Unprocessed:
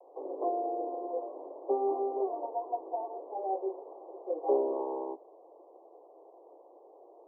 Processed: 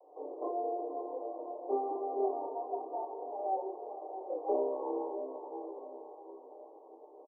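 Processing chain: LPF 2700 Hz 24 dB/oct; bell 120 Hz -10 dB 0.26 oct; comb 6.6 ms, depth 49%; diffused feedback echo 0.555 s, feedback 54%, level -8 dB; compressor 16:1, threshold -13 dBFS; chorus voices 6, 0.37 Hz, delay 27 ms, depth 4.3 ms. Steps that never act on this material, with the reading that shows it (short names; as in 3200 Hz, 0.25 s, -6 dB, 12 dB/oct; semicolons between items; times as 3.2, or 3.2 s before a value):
LPF 2700 Hz: input band ends at 1100 Hz; bell 120 Hz: input band starts at 250 Hz; compressor, threshold -13 dBFS: input peak -16.0 dBFS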